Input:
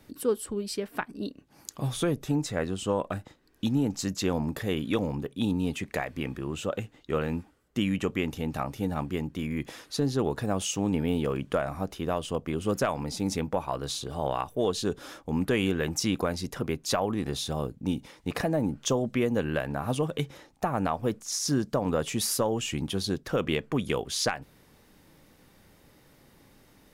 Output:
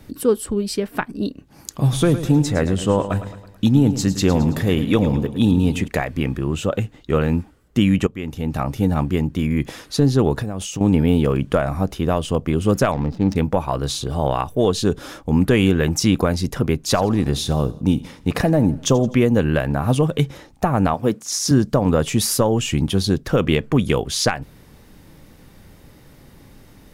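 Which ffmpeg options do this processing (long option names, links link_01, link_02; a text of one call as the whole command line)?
ffmpeg -i in.wav -filter_complex "[0:a]asettb=1/sr,asplit=3[link_01][link_02][link_03];[link_01]atrim=end=1.774[link_04];[link_02]atrim=start=1.77:end=5.88,asetpts=PTS-STARTPTS,afade=type=in:duration=0.004:curve=qsin,afade=type=out:start_time=4.106:duration=0.004:curve=qsin,aecho=1:1:109|218|327|436|545:0.251|0.126|0.0628|0.0314|0.0157,atrim=end_sample=181251[link_05];[link_03]atrim=start=5.876[link_06];[link_04][link_05]acrossfade=duration=0.004:curve1=hsin:curve2=qsin[link_07];[link_07][link_06]acrossfade=duration=0.004:curve1=qsin:curve2=hsin,asettb=1/sr,asplit=3[link_08][link_09][link_10];[link_08]atrim=end=10.394[link_11];[link_09]atrim=start=10.39:end=10.81,asetpts=PTS-STARTPTS,afade=type=in:duration=0.004:curve=qsin,afade=type=out:start_time=0.416:duration=0.004:curve=qsin,acompressor=threshold=-33dB:ratio=10:attack=3.2:release=140:knee=1:detection=peak[link_12];[link_10]atrim=start=10.806[link_13];[link_11][link_12]acrossfade=duration=0.004:curve1=hsin:curve2=qsin[link_14];[link_14][link_13]acrossfade=duration=0.004:curve1=qsin:curve2=hsin,asettb=1/sr,asplit=3[link_15][link_16][link_17];[link_15]atrim=end=12.924[link_18];[link_16]atrim=start=12.92:end=13.36,asetpts=PTS-STARTPTS,afade=type=in:duration=0.004:curve=qsin,afade=type=out:start_time=0.436:duration=0.004:curve=qsin,adynamicsmooth=sensitivity=5.5:basefreq=580[link_19];[link_17]atrim=start=13.356[link_20];[link_18][link_19]acrossfade=duration=0.004:curve1=hsin:curve2=qsin[link_21];[link_21][link_20]acrossfade=duration=0.004:curve1=qsin:curve2=hsin,asettb=1/sr,asplit=3[link_22][link_23][link_24];[link_22]atrim=end=16.804[link_25];[link_23]atrim=start=16.8:end=19.22,asetpts=PTS-STARTPTS,afade=type=in:duration=0.004:curve=qsin,afade=type=out:start_time=2.416:duration=0.004:curve=qsin,aecho=1:1:84|168|252|336:0.1|0.049|0.024|0.0118,atrim=end_sample=106722[link_26];[link_24]atrim=start=19.216[link_27];[link_25][link_26]acrossfade=duration=0.004:curve1=hsin:curve2=qsin[link_28];[link_28][link_27]acrossfade=duration=0.004:curve1=qsin:curve2=hsin,asettb=1/sr,asplit=3[link_29][link_30][link_31];[link_29]atrim=end=20.944[link_32];[link_30]atrim=start=20.94:end=21.51,asetpts=PTS-STARTPTS,afade=type=in:duration=0.004:curve=qsin,afade=type=out:start_time=0.566:duration=0.004:curve=qsin,highpass=160[link_33];[link_31]atrim=start=21.506[link_34];[link_32][link_33]acrossfade=duration=0.004:curve1=hsin:curve2=qsin[link_35];[link_35][link_34]acrossfade=duration=0.004:curve1=qsin:curve2=hsin,asplit=2[link_36][link_37];[link_36]atrim=end=8.07,asetpts=PTS-STARTPTS,afade=type=out:start_time=8.066:duration=0.004:curve=hsin:silence=0.11885[link_38];[link_37]atrim=start=8.07,asetpts=PTS-STARTPTS,afade=type=in:duration=0.65:silence=0.11885[link_39];[link_38][link_39]concat=n=2:v=0:a=1,lowshelf=frequency=190:gain=9,volume=7.5dB" out.wav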